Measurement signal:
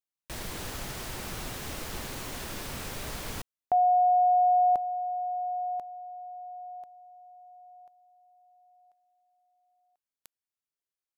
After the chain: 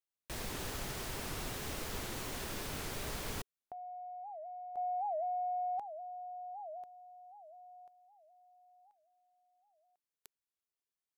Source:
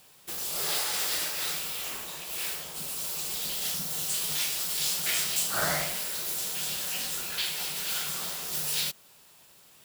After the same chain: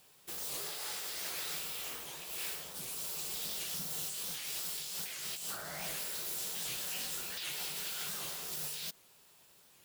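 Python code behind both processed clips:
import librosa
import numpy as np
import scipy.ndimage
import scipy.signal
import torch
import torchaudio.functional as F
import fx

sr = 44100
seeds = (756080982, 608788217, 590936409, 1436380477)

y = fx.over_compress(x, sr, threshold_db=-32.0, ratio=-1.0)
y = fx.peak_eq(y, sr, hz=410.0, db=3.5, octaves=0.28)
y = fx.record_warp(y, sr, rpm=78.0, depth_cents=250.0)
y = y * 10.0 ** (-7.5 / 20.0)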